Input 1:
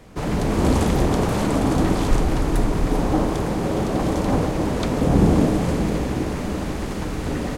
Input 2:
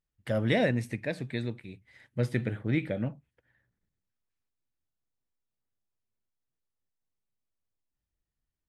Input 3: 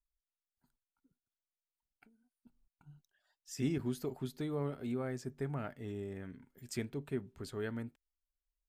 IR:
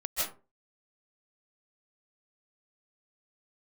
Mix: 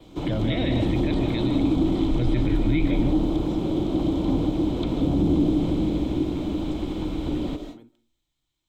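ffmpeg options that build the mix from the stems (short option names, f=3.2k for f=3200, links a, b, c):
-filter_complex "[0:a]volume=-5.5dB,asplit=2[a][b];[b]volume=-14dB[c];[1:a]equalizer=f=125:t=o:w=1:g=5,equalizer=f=1k:t=o:w=1:g=7,equalizer=f=2k:t=o:w=1:g=9,equalizer=f=4k:t=o:w=1:g=4,equalizer=f=8k:t=o:w=1:g=9,volume=1.5dB,asplit=3[d][e][f];[e]volume=-14.5dB[g];[2:a]equalizer=f=82:t=o:w=1.4:g=-12,acompressor=threshold=-46dB:ratio=10,volume=-0.5dB,asplit=2[h][i];[i]volume=-23.5dB[j];[f]apad=whole_len=382899[k];[h][k]sidechaincompress=threshold=-38dB:ratio=16:attack=8.8:release=309[l];[a][d]amix=inputs=2:normalize=0,adynamicequalizer=threshold=0.00126:dfrequency=6300:dqfactor=4.1:tfrequency=6300:tqfactor=4.1:attack=5:release=100:ratio=0.375:range=2:mode=cutabove:tftype=bell,alimiter=limit=-17.5dB:level=0:latency=1:release=12,volume=0dB[m];[3:a]atrim=start_sample=2205[n];[c][g][j]amix=inputs=3:normalize=0[o];[o][n]afir=irnorm=-1:irlink=0[p];[l][m][p]amix=inputs=3:normalize=0,acrossover=split=3100[q][r];[r]acompressor=threshold=-55dB:ratio=4:attack=1:release=60[s];[q][s]amix=inputs=2:normalize=0,superequalizer=6b=2.82:10b=0.631:11b=0.355:13b=2.82:16b=0.447,acrossover=split=320|3000[t][u][v];[u]acompressor=threshold=-35dB:ratio=2[w];[t][w][v]amix=inputs=3:normalize=0"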